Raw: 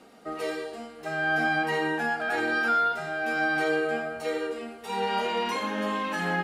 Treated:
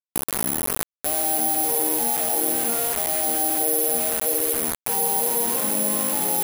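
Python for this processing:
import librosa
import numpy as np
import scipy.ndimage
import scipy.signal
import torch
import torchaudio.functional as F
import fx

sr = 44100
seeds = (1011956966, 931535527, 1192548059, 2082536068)

y = fx.tape_start_head(x, sr, length_s=1.14)
y = scipy.signal.sosfilt(scipy.signal.ellip(3, 1.0, 70, [210.0, 850.0], 'bandpass', fs=sr, output='sos'), y)
y = fx.quant_dither(y, sr, seeds[0], bits=6, dither='none')
y = (np.kron(y[::4], np.eye(4)[0]) * 4)[:len(y)]
y = fx.env_flatten(y, sr, amount_pct=70)
y = y * librosa.db_to_amplitude(-1.0)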